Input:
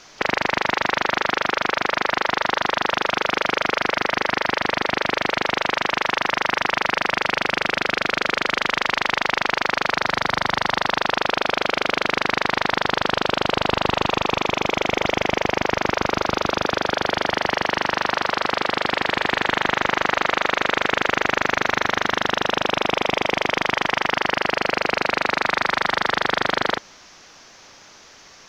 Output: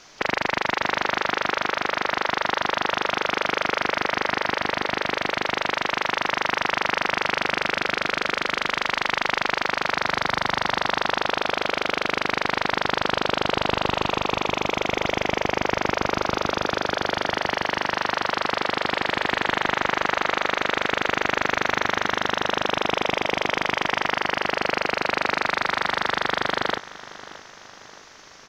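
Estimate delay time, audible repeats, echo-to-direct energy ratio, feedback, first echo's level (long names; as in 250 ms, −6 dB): 620 ms, 3, −15.5 dB, 49%, −16.5 dB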